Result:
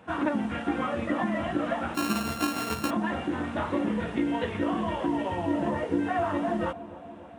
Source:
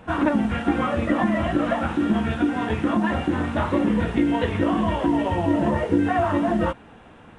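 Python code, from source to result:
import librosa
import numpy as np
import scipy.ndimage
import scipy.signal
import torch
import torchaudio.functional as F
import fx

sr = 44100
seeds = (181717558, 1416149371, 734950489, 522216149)

y = fx.sample_sort(x, sr, block=32, at=(1.94, 2.89), fade=0.02)
y = scipy.signal.sosfilt(scipy.signal.butter(2, 67.0, 'highpass', fs=sr, output='sos'), y)
y = fx.low_shelf(y, sr, hz=150.0, db=-6.5)
y = fx.echo_bbd(y, sr, ms=287, stages=2048, feedback_pct=71, wet_db=-16)
y = F.gain(torch.from_numpy(y), -5.5).numpy()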